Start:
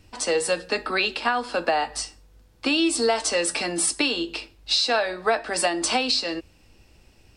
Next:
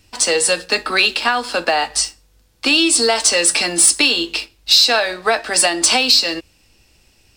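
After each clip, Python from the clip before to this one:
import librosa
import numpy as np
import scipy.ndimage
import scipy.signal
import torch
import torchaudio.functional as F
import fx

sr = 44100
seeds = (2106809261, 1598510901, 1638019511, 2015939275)

y = fx.high_shelf(x, sr, hz=2100.0, db=10.0)
y = fx.leveller(y, sr, passes=1)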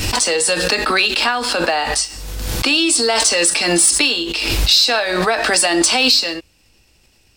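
y = fx.pre_swell(x, sr, db_per_s=30.0)
y = y * librosa.db_to_amplitude(-1.5)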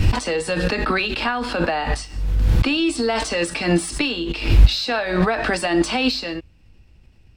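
y = fx.bass_treble(x, sr, bass_db=13, treble_db=-14)
y = y * librosa.db_to_amplitude(-4.5)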